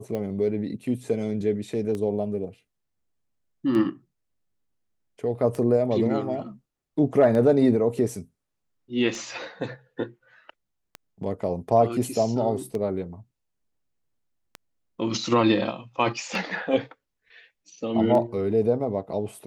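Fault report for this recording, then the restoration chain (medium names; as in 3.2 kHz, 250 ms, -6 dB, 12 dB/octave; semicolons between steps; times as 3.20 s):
tick 33 1/3 rpm -19 dBFS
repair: de-click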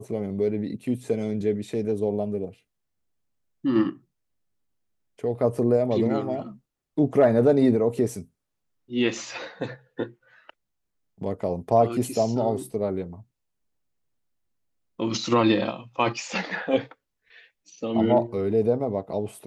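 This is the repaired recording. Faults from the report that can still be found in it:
nothing left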